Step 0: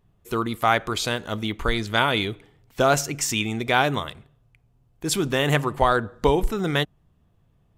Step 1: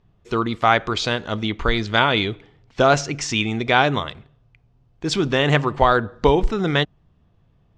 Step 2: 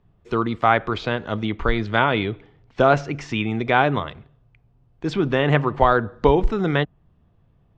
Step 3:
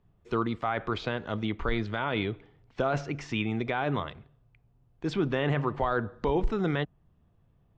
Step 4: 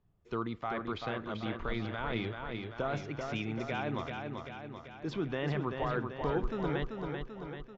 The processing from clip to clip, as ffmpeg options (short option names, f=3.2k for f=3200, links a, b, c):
-af "lowpass=f=5.8k:w=0.5412,lowpass=f=5.8k:w=1.3066,volume=3.5dB"
-filter_complex "[0:a]highshelf=f=4.2k:g=-12,acrossover=split=120|3500[a][b][c];[c]acompressor=threshold=-45dB:ratio=6[d];[a][b][d]amix=inputs=3:normalize=0"
-af "alimiter=limit=-11dB:level=0:latency=1:release=17,volume=-6dB"
-filter_complex "[0:a]asplit=2[a][b];[b]aecho=0:1:388|776|1164|1552|1940|2328|2716|3104:0.562|0.326|0.189|0.11|0.0636|0.0369|0.0214|0.0124[c];[a][c]amix=inputs=2:normalize=0,aresample=16000,aresample=44100,volume=-7dB"